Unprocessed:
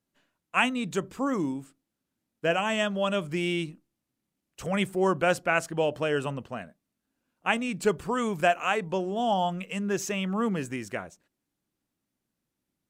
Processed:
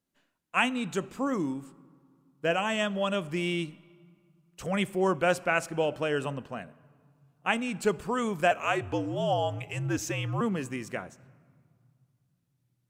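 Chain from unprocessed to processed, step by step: 8.51–10.41 frequency shift -67 Hz; on a send: reverb RT60 2.1 s, pre-delay 4 ms, DRR 18 dB; on the sum: gain -1.5 dB

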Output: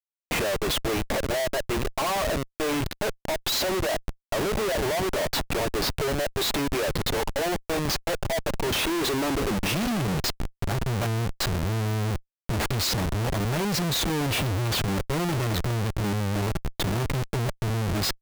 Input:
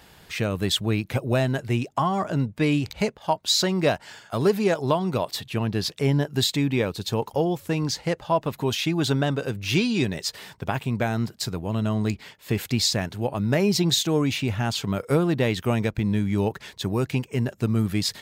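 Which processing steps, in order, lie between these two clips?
high-pass sweep 570 Hz -> 60 Hz, 8.69–10.78; notch comb 250 Hz; Schmitt trigger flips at -32.5 dBFS; gain -1 dB

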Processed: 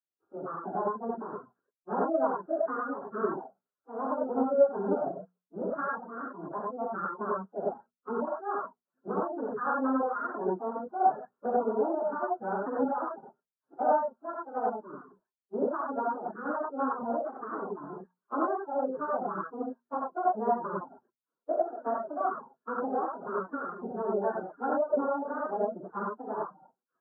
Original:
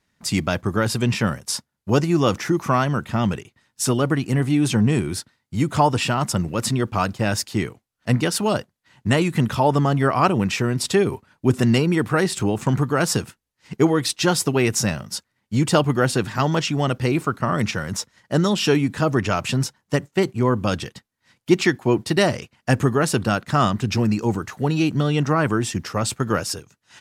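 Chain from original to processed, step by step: pitch shift by moving bins +11 st; tilt +3 dB/oct; compressor 12:1, threshold -27 dBFS, peak gain reduction 14.5 dB; steep low-pass 1500 Hz 96 dB/oct; low shelf 160 Hz -4 dB; notches 60/120/180/240 Hz; non-linear reverb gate 0.12 s rising, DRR -3 dB; reverb removal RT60 0.52 s; three-band expander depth 70%

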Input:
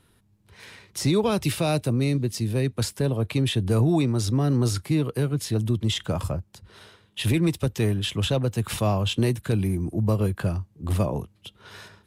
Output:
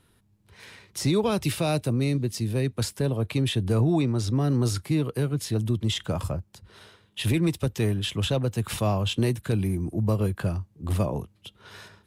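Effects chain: 3.72–4.37 high shelf 7800 Hz -8.5 dB; gain -1.5 dB

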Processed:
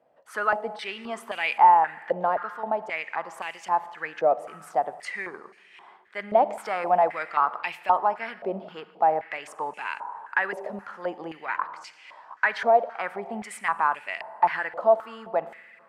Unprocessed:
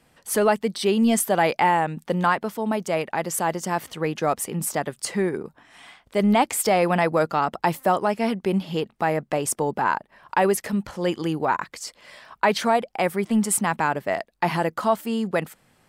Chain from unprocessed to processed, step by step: Schroeder reverb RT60 2 s, DRR 14 dB; stepped band-pass 3.8 Hz 620–2500 Hz; gain +6 dB

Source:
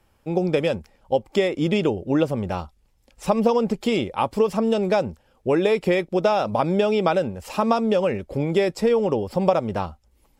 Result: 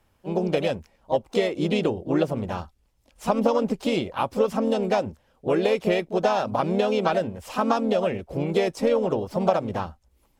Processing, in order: harmoniser +3 st -6 dB, +5 st -18 dB; added harmonics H 7 -38 dB, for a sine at -2.5 dBFS; gain -3 dB

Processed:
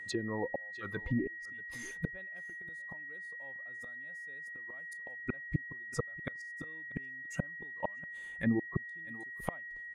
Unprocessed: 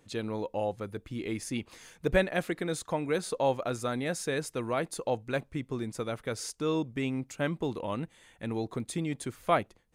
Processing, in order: spectral noise reduction 13 dB; flipped gate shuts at -29 dBFS, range -40 dB; on a send: echo 0.638 s -22 dB; on the sum: treble ducked by the level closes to 350 Hz, closed at -38.5 dBFS; whine 1900 Hz -53 dBFS; gain +10.5 dB

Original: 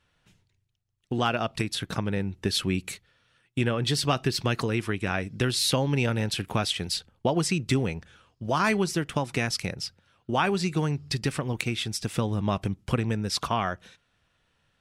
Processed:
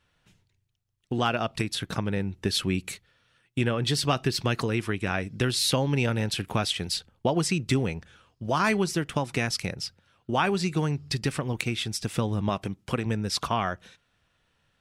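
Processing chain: 12.49–13.06 low shelf 110 Hz -11.5 dB

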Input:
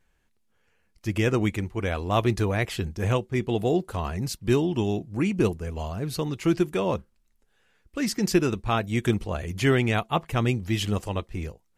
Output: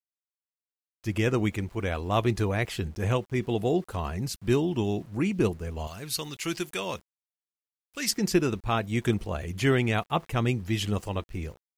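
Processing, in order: 5.87–8.11 tilt shelf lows -9 dB, about 1400 Hz; sample gate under -48.5 dBFS; gain -2 dB

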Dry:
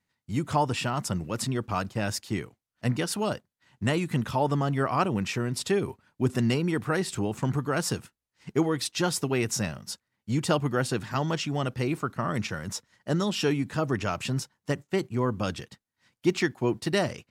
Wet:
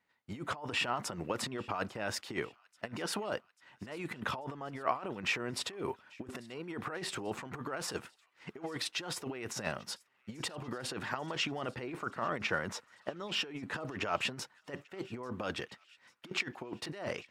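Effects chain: 11.66–13.71 high shelf 5200 Hz -5.5 dB; negative-ratio compressor -31 dBFS, ratio -0.5; tone controls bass -15 dB, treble -13 dB; thin delay 0.841 s, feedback 63%, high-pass 1800 Hz, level -23 dB

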